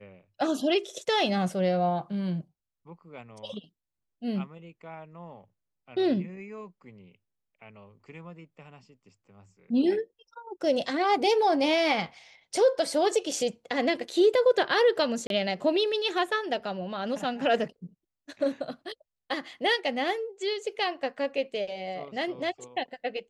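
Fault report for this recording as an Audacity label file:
15.270000	15.300000	dropout 32 ms

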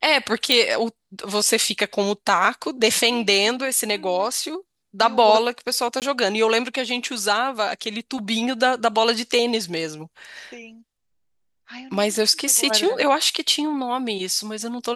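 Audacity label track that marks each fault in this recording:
0.520000	0.520000	pop -3 dBFS
6.000000	6.020000	dropout 18 ms

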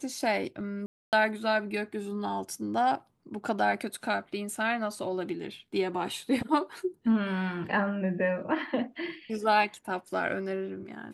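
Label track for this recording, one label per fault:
0.860000	1.130000	dropout 268 ms

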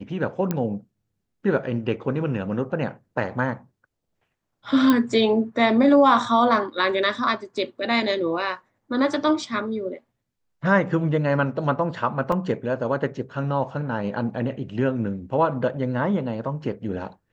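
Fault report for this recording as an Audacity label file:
0.510000	0.510000	pop -11 dBFS
4.900000	4.900000	pop -7 dBFS
12.320000	12.320000	dropout 3.3 ms

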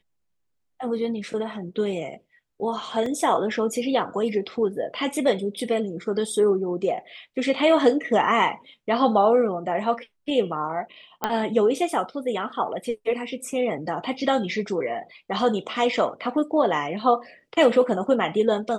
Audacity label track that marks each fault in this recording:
3.060000	3.060000	dropout 3 ms
11.240000	11.240000	pop -9 dBFS

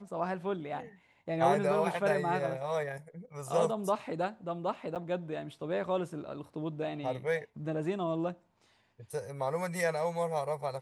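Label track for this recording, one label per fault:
4.950000	4.960000	dropout 8.1 ms

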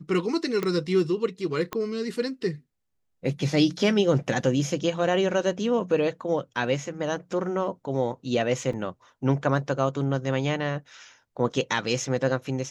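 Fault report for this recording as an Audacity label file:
0.630000	0.630000	pop -14 dBFS
1.730000	1.730000	pop -15 dBFS
8.730000	8.730000	dropout 3.6 ms

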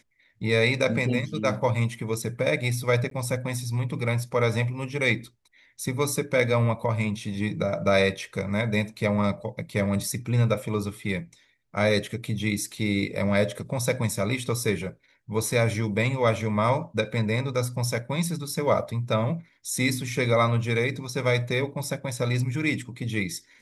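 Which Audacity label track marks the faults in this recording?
3.100000	3.110000	dropout 13 ms

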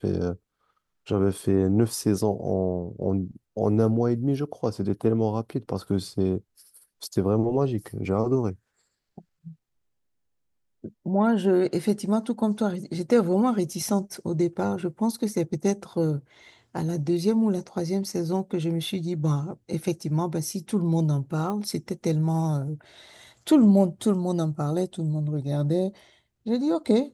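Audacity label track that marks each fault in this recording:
21.500000	21.500000	pop -20 dBFS

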